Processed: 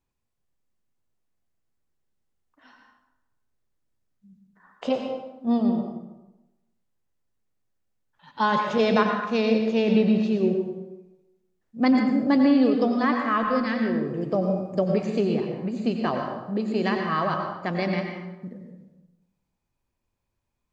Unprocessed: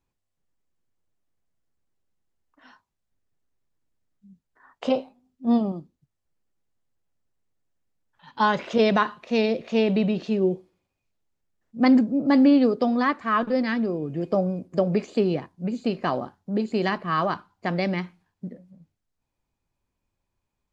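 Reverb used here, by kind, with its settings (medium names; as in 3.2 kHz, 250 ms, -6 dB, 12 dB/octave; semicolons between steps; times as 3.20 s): plate-style reverb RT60 1 s, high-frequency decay 0.65×, pre-delay 80 ms, DRR 2.5 dB; trim -2 dB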